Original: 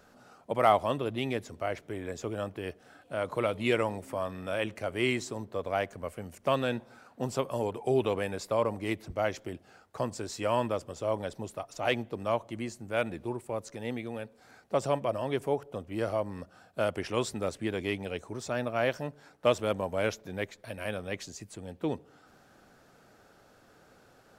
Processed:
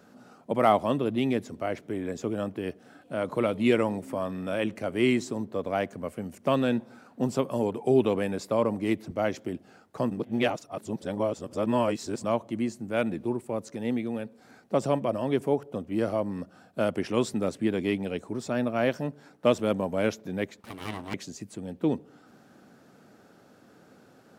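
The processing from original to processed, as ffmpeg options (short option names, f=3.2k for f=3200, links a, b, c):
-filter_complex "[0:a]asettb=1/sr,asplit=3[a][b][c];[a]atrim=end=17.594[d];[b]atrim=start=17.59:end=18.67,asetpts=PTS-STARTPTS,afade=t=in:d=0.004:c=qsin,afade=t=out:st=1.076:d=0.004:c=qsin,bandreject=f=6.1k:w=12[e];[c]atrim=start=18.666[f];[d][e]acrossfade=d=0.004:c1=hsin:c2=qsin[g];[g][f]acrossfade=d=0.004:c1=qsin:c2=hsin,asettb=1/sr,asplit=3[h][i][j];[h]atrim=end=20.604[k];[i]atrim=start=20.6:end=21.14,asetpts=PTS-STARTPTS,afade=t=in:d=0.004:c=qsin,afade=t=out:st=0.536:d=0.004:c=qsin,aeval=exprs='abs(val(0))':c=same[l];[j]atrim=start=21.136[m];[k][l]acrossfade=d=0.004:c1=hsin:c2=qsin[n];[n][m]acrossfade=d=0.004:c1=qsin:c2=hsin,asplit=3[o][p][q];[o]atrim=end=10.112[r];[p]atrim=start=10.108:end=12.242,asetpts=PTS-STARTPTS,areverse[s];[q]atrim=start=12.238[t];[r][s]acrossfade=d=0.004:c1=hsin:c2=hsin[u];[u][t]acrossfade=d=0.004:c1=hsin:c2=hsin,highpass=92,equalizer=f=230:w=0.91:g=9.5"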